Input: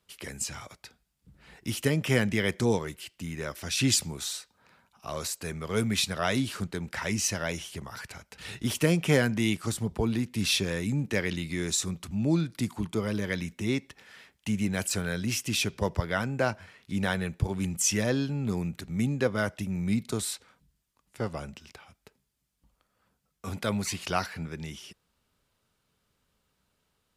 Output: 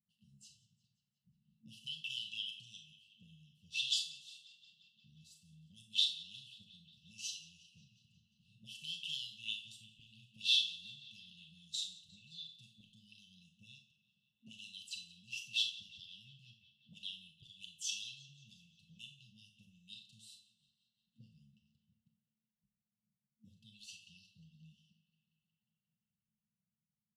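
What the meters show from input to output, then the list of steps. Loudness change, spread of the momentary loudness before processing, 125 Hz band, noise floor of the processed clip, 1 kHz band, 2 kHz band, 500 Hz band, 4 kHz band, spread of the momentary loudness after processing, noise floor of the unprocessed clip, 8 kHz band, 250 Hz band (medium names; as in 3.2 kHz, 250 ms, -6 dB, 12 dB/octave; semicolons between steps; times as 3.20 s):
-9.0 dB, 14 LU, -32.5 dB, under -85 dBFS, under -40 dB, -16.5 dB, under -40 dB, -3.5 dB, 23 LU, -76 dBFS, -17.5 dB, -36.0 dB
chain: FFT band-reject 220–2600 Hz; auto-wah 240–3400 Hz, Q 4.8, up, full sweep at -26 dBFS; comb 7.5 ms, depth 43%; tape echo 178 ms, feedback 80%, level -17.5 dB, low-pass 5.4 kHz; Schroeder reverb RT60 0.36 s, combs from 25 ms, DRR 4 dB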